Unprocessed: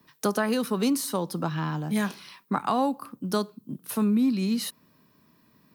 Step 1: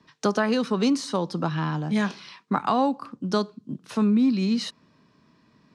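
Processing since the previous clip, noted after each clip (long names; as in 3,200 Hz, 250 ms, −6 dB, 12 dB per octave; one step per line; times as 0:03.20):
low-pass filter 6,600 Hz 24 dB per octave
level +2.5 dB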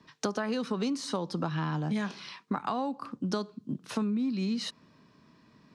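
downward compressor, threshold −28 dBFS, peak gain reduction 10.5 dB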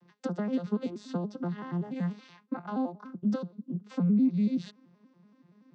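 vocoder with an arpeggio as carrier minor triad, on F3, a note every 95 ms
level +2.5 dB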